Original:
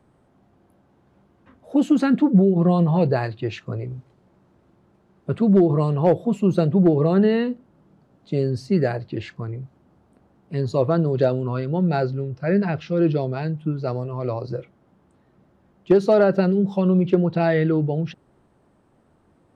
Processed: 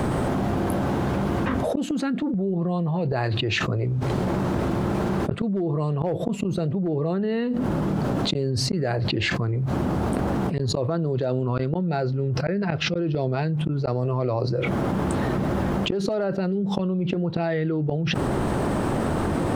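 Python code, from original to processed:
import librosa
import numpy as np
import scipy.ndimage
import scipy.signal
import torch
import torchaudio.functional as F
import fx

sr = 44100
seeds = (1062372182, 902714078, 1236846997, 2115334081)

y = fx.gate_flip(x, sr, shuts_db=-14.0, range_db=-34)
y = fx.env_flatten(y, sr, amount_pct=100)
y = y * 10.0 ** (-2.5 / 20.0)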